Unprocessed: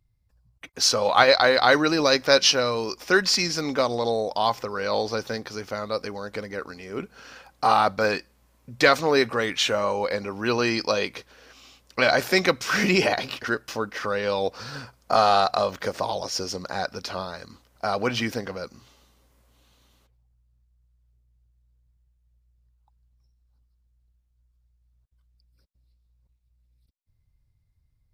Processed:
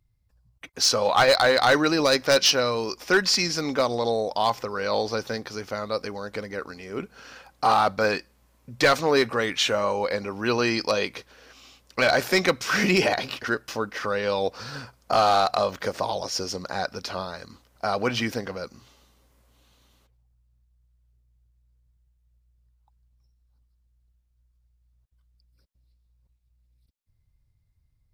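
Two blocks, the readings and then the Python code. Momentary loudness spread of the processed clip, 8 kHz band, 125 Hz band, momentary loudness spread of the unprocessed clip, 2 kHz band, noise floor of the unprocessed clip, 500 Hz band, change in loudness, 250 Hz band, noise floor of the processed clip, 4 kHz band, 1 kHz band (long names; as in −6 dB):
15 LU, 0.0 dB, 0.0 dB, 16 LU, −1.0 dB, −68 dBFS, −0.5 dB, −0.5 dB, 0.0 dB, −68 dBFS, −0.5 dB, −0.5 dB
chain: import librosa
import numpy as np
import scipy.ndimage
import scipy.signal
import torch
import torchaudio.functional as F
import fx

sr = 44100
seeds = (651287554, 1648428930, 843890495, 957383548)

y = np.clip(x, -10.0 ** (-12.0 / 20.0), 10.0 ** (-12.0 / 20.0))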